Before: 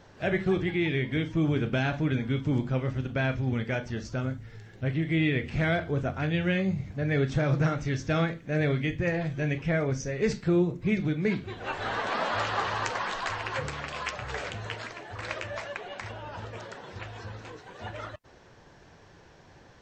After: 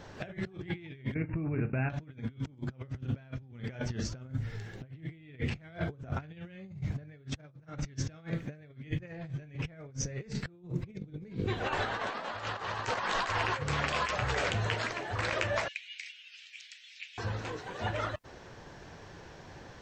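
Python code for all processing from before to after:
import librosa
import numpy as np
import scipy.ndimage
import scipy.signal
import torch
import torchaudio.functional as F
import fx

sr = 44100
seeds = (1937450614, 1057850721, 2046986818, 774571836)

y = fx.chain(x, sr, fx.over_compress(threshold_db=-36.0, ratio=-1.0),
    fx.brickwall_lowpass(high_hz=2800.0), at=(1.14, 1.9))
y = fx.peak_eq(y, sr, hz=1700.0, db=-7.5, octaves=2.4, at=(10.86, 11.46), fade=0.02)
y = fx.dmg_buzz(y, sr, base_hz=50.0, harmonics=10, level_db=-41.0, tilt_db=0, odd_only=False, at=(10.86, 11.46), fade=0.02)
y = fx.chain(y, sr, fx.ellip_highpass(hz=2300.0, order=4, stop_db=60),
    fx.high_shelf(hz=5700.0, db=-8.5), at=(15.68, 17.18))
y = fx.dynamic_eq(y, sr, hz=130.0, q=2.1, threshold_db=-43.0, ratio=4.0, max_db=6)
y = fx.over_compress(y, sr, threshold_db=-34.0, ratio=-0.5)
y = y * librosa.db_to_amplitude(-2.0)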